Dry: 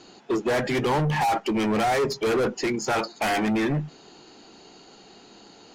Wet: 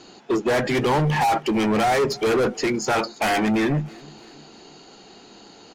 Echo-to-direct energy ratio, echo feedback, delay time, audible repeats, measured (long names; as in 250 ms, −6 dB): −23.0 dB, 49%, 321 ms, 2